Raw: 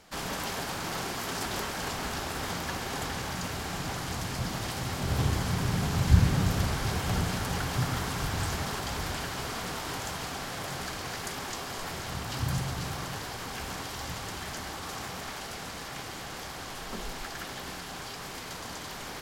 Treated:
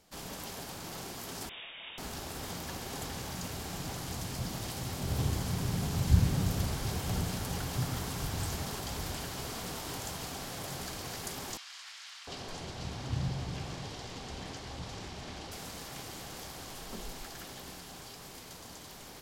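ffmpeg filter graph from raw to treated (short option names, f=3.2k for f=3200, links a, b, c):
-filter_complex "[0:a]asettb=1/sr,asplit=3[a][b][c];[a]atrim=end=1.494[d];[b]atrim=start=1.49:end=1.98,asetpts=PTS-STARTPTS,afade=t=in:d=0.004:c=qsin,afade=t=out:st=0.486:d=0.004:c=qsin,lowshelf=f=370:g=-9.5,lowpass=f=3.2k:t=q:w=0.5098,lowpass=f=3.2k:t=q:w=0.6013,lowpass=f=3.2k:t=q:w=0.9,lowpass=f=3.2k:t=q:w=2.563,afreqshift=-3800[e];[c]atrim=start=1.976[f];[d][e]acrossfade=d=0.004:c1=hsin:c2=qsin[g];[g][f]acrossfade=d=0.004:c1=qsin:c2=hsin,asettb=1/sr,asplit=3[h][i][j];[h]atrim=end=11.574[k];[i]atrim=start=11.57:end=15.52,asetpts=PTS-STARTPTS,afade=t=in:d=0.004:c=qsin,afade=t=out:st=3.946:d=0.004:c=qsin,lowpass=5.1k,acrossover=split=1300[l][m];[l]adelay=700[n];[n][m]amix=inputs=2:normalize=0,atrim=end_sample=174195[o];[j]atrim=start=15.516[p];[k][o]acrossfade=d=0.004:c1=hsin:c2=qsin[q];[q][p]acrossfade=d=0.004:c1=qsin:c2=hsin,equalizer=f=1.5k:w=0.8:g=-6,dynaudnorm=f=490:g=11:m=4.5dB,highshelf=f=11k:g=6,volume=-7dB"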